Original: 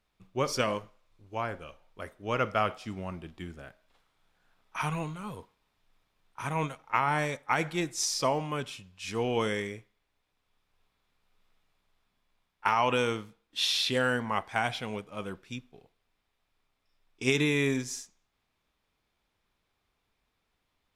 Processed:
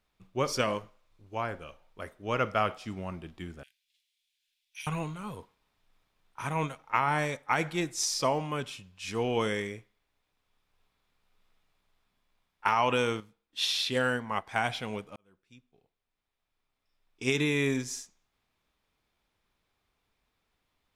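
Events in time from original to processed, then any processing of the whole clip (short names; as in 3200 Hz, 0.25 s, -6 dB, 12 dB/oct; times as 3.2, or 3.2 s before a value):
3.63–4.87 inverse Chebyshev high-pass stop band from 1300 Hz
13.2–14.47 upward expander, over -40 dBFS
15.16–17.81 fade in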